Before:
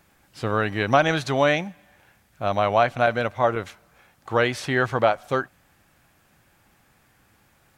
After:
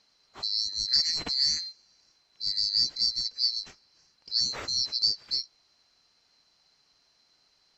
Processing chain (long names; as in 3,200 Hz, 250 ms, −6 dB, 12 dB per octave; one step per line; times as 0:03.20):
neighbouring bands swapped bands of 4,000 Hz
low-pass filter 3,400 Hz 12 dB per octave